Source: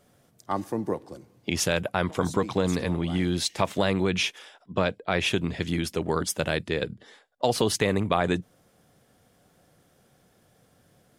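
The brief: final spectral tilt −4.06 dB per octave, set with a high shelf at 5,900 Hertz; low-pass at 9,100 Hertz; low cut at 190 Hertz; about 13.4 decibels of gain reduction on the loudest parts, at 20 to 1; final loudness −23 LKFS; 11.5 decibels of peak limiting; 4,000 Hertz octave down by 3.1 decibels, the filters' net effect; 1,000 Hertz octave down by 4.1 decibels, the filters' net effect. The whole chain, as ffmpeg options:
ffmpeg -i in.wav -af "highpass=190,lowpass=9100,equalizer=frequency=1000:width_type=o:gain=-5.5,equalizer=frequency=4000:width_type=o:gain=-5,highshelf=frequency=5900:gain=4,acompressor=threshold=-34dB:ratio=20,volume=19.5dB,alimiter=limit=-11dB:level=0:latency=1" out.wav

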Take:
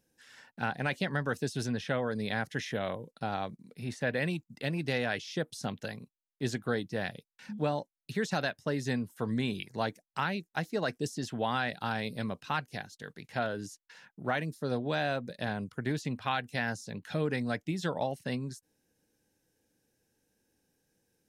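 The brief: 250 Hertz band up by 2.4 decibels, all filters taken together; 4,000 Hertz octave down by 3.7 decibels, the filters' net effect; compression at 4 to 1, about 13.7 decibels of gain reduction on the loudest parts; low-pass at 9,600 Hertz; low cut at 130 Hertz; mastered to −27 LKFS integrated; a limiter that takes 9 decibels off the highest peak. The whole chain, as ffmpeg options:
ffmpeg -i in.wav -af "highpass=130,lowpass=9600,equalizer=frequency=250:width_type=o:gain=3.5,equalizer=frequency=4000:width_type=o:gain=-4.5,acompressor=threshold=-43dB:ratio=4,volume=20dB,alimiter=limit=-14.5dB:level=0:latency=1" out.wav

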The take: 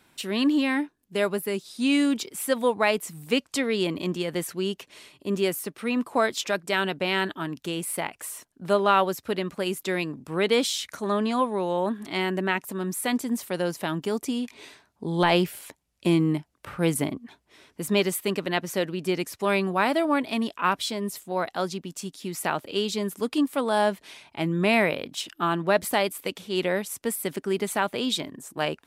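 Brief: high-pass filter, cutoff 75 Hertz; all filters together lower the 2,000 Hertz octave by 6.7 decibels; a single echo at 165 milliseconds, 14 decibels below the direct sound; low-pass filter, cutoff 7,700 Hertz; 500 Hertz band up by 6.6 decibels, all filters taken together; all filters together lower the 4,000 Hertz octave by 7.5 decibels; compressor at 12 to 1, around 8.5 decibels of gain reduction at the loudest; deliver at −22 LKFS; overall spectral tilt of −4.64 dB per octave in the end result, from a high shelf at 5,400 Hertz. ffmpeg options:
ffmpeg -i in.wav -af "highpass=75,lowpass=7700,equalizer=frequency=500:width_type=o:gain=9,equalizer=frequency=2000:width_type=o:gain=-7,equalizer=frequency=4000:width_type=o:gain=-4,highshelf=frequency=5400:gain=-8,acompressor=threshold=-19dB:ratio=12,aecho=1:1:165:0.2,volume=4.5dB" out.wav

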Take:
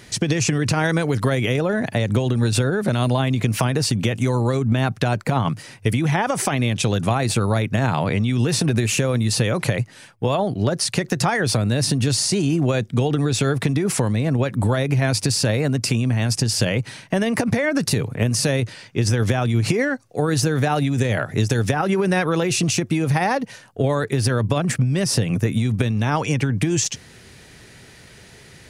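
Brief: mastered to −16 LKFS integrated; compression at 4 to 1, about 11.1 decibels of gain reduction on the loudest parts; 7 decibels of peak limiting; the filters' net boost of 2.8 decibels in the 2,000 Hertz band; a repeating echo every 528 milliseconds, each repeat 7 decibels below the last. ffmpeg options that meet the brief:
ffmpeg -i in.wav -af "equalizer=frequency=2000:width_type=o:gain=3.5,acompressor=threshold=-29dB:ratio=4,alimiter=limit=-22dB:level=0:latency=1,aecho=1:1:528|1056|1584|2112|2640:0.447|0.201|0.0905|0.0407|0.0183,volume=15dB" out.wav

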